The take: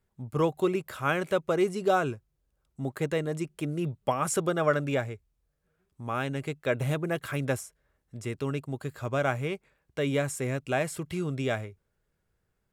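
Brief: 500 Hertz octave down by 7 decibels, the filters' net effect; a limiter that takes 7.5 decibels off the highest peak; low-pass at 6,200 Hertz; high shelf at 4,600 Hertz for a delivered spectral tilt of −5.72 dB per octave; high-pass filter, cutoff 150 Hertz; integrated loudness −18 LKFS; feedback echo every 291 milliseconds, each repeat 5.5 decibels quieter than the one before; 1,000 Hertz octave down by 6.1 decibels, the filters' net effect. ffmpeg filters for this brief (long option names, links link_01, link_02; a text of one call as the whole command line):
ffmpeg -i in.wav -af "highpass=150,lowpass=6200,equalizer=frequency=500:width_type=o:gain=-7.5,equalizer=frequency=1000:width_type=o:gain=-5.5,highshelf=frequency=4600:gain=-8.5,alimiter=limit=-23.5dB:level=0:latency=1,aecho=1:1:291|582|873|1164|1455|1746|2037:0.531|0.281|0.149|0.079|0.0419|0.0222|0.0118,volume=18dB" out.wav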